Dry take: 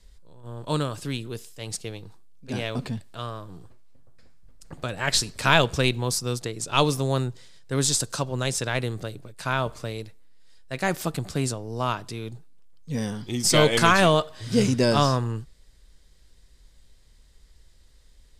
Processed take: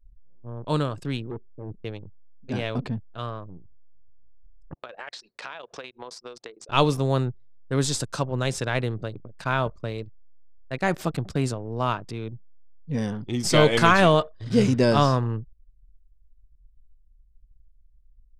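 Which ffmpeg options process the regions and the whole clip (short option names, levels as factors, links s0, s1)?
-filter_complex "[0:a]asettb=1/sr,asplit=3[s0][s1][s2];[s0]atrim=end=1.314[s3];[s1]atrim=start=1.31:end=1.83,asetpts=PTS-STARTPTS,afade=t=in:d=0.004:c=qsin,afade=t=out:st=0.516:d=0.004:c=qsin,lowpass=f=370:t=q:w=2,asoftclip=type=hard:threshold=0.0266[s4];[s2]atrim=start=1.826[s5];[s3][s4]acrossfade=d=0.004:c1=hsin:c2=qsin[s6];[s6][s5]acrossfade=d=0.004:c1=qsin:c2=hsin,asettb=1/sr,asplit=3[s7][s8][s9];[s7]atrim=end=4.744[s10];[s8]atrim=start=4.74:end=6.69,asetpts=PTS-STARTPTS,afade=t=in:d=0.004:c=qsin,afade=t=out:st=1.946:d=0.004:c=qsin,highpass=500,lowpass=5900,acompressor=threshold=0.0224:ratio=10:attack=3.2:release=140:knee=1:detection=peak[s11];[s9]atrim=start=6.686[s12];[s10][s11]acrossfade=d=0.004:c1=hsin:c2=qsin[s13];[s13][s12]acrossfade=d=0.004:c1=qsin:c2=hsin,anlmdn=1,highshelf=f=5000:g=-11.5,volume=1.19"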